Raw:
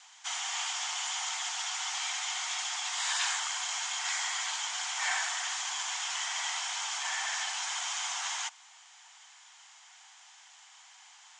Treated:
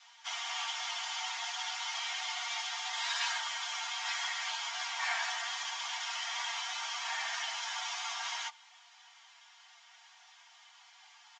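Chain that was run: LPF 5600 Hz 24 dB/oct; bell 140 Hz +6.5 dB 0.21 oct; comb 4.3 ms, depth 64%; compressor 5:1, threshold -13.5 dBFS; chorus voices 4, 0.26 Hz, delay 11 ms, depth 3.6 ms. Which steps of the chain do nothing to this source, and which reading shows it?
bell 140 Hz: input band starts at 570 Hz; compressor, threshold -13.5 dBFS: input peak -17.0 dBFS

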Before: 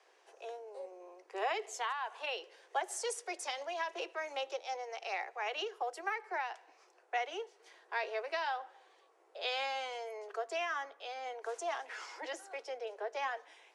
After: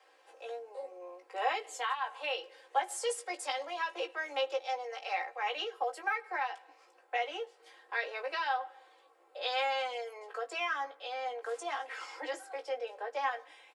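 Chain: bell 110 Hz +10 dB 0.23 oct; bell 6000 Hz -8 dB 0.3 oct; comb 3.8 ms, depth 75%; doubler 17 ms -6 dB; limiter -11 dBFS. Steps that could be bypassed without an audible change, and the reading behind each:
bell 110 Hz: input band starts at 270 Hz; limiter -11 dBFS: input peak -18.0 dBFS

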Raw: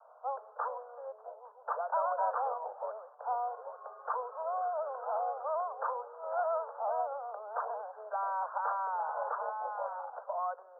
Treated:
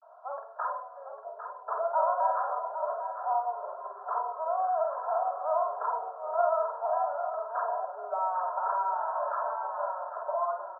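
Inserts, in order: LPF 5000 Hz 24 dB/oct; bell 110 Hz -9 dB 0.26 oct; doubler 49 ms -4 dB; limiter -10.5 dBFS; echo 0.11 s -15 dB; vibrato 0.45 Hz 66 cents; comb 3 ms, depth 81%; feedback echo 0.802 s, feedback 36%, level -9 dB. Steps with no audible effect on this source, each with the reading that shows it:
LPF 5000 Hz: input band ends at 1600 Hz; bell 110 Hz: input band starts at 400 Hz; limiter -10.5 dBFS: input peak -18.5 dBFS

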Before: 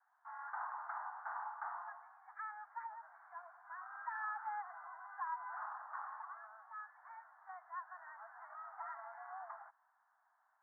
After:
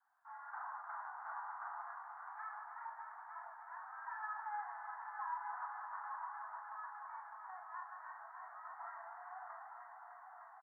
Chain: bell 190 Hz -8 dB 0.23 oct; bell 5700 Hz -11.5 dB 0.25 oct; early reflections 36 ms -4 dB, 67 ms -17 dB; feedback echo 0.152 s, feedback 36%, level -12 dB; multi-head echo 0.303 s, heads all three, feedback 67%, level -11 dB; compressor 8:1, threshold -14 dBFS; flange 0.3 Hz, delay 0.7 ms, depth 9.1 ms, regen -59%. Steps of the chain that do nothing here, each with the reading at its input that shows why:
bell 190 Hz: input band starts at 600 Hz; bell 5700 Hz: input band ends at 2000 Hz; compressor, threshold -14 dBFS: input peak -27.5 dBFS

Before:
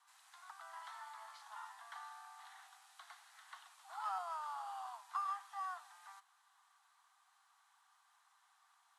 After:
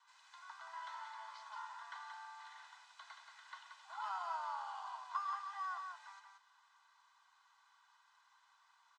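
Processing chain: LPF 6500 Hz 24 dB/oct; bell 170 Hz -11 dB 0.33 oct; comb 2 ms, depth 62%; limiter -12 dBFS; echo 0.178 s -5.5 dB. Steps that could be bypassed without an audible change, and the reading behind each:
bell 170 Hz: input band starts at 600 Hz; limiter -12 dBFS: input peak -26.5 dBFS

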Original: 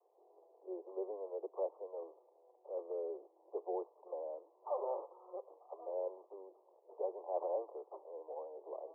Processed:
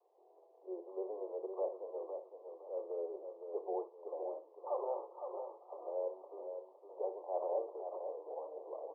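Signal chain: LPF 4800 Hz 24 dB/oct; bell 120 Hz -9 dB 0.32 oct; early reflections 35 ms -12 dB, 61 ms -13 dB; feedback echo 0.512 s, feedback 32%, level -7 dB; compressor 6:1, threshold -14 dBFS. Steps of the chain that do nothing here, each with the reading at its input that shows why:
LPF 4800 Hz: input band ends at 1200 Hz; bell 120 Hz: input band starts at 300 Hz; compressor, threshold -14 dBFS: input peak -25.5 dBFS

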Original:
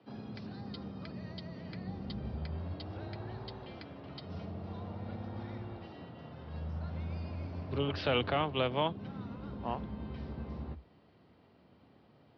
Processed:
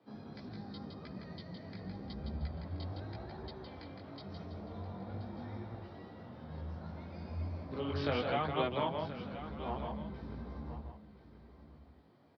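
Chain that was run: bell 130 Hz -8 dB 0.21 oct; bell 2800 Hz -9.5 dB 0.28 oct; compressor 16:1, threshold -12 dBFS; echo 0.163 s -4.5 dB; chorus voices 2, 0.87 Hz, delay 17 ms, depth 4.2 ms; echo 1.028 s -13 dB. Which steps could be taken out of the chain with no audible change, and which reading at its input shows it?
compressor, threshold -12 dBFS: input peak -19.0 dBFS

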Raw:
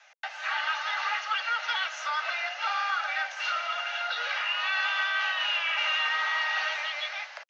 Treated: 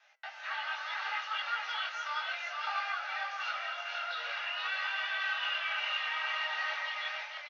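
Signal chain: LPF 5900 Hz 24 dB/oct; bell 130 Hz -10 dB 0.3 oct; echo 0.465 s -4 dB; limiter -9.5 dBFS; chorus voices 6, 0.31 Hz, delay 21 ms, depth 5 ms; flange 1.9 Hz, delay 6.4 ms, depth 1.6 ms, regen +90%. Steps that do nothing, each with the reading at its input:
bell 130 Hz: input band starts at 450 Hz; limiter -9.5 dBFS: input peak -14.5 dBFS

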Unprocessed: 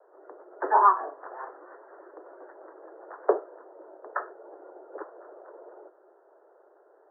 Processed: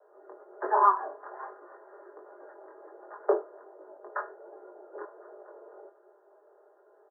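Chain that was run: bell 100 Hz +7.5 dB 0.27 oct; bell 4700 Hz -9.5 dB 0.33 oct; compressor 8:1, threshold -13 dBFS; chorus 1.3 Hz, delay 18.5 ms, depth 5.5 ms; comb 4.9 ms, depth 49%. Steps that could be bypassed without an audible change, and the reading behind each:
bell 100 Hz: input band starts at 270 Hz; bell 4700 Hz: input band ends at 1800 Hz

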